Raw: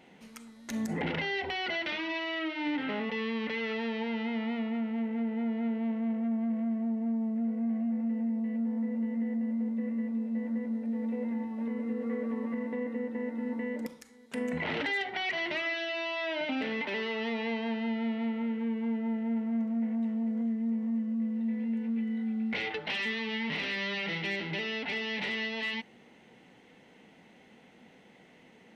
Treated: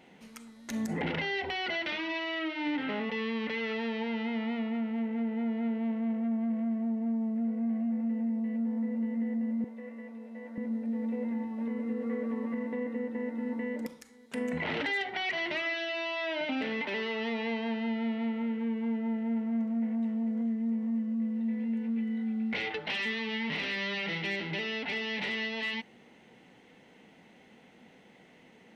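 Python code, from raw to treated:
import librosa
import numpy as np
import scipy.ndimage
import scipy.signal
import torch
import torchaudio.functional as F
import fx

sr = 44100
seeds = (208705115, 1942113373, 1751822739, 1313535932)

y = fx.highpass(x, sr, hz=460.0, slope=12, at=(9.64, 10.58))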